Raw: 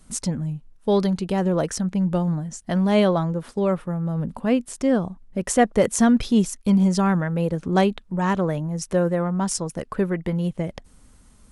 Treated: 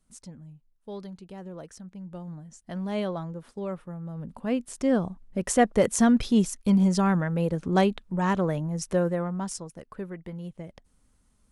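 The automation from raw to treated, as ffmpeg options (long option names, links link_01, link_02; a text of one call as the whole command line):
ffmpeg -i in.wav -af "volume=-3dB,afade=type=in:start_time=2.04:duration=0.84:silence=0.421697,afade=type=in:start_time=4.2:duration=0.76:silence=0.375837,afade=type=out:start_time=8.89:duration=0.84:silence=0.298538" out.wav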